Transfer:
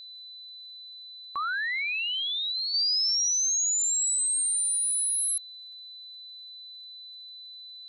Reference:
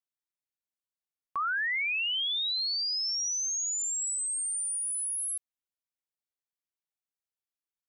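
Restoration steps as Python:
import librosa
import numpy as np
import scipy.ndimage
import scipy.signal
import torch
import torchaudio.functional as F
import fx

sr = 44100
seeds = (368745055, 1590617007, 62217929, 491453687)

y = fx.fix_declick_ar(x, sr, threshold=6.5)
y = fx.notch(y, sr, hz=4000.0, q=30.0)
y = fx.fix_level(y, sr, at_s=2.74, step_db=-5.5)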